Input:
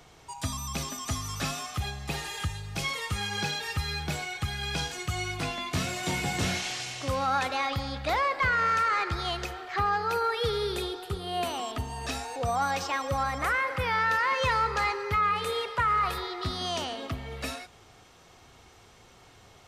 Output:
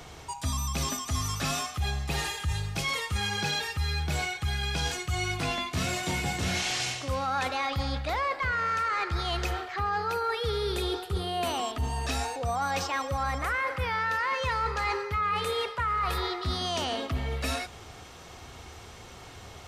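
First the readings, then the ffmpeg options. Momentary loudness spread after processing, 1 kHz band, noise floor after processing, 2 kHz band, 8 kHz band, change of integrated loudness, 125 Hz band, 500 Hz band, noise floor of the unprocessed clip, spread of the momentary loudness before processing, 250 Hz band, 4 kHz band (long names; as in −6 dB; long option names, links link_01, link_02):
6 LU, −1.5 dB, −47 dBFS, −1.0 dB, +2.0 dB, −0.5 dB, +2.5 dB, −0.5 dB, −55 dBFS, 9 LU, +0.5 dB, +1.0 dB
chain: -af "equalizer=frequency=74:width_type=o:width=0.34:gain=9,areverse,acompressor=threshold=-35dB:ratio=6,areverse,volume=8dB"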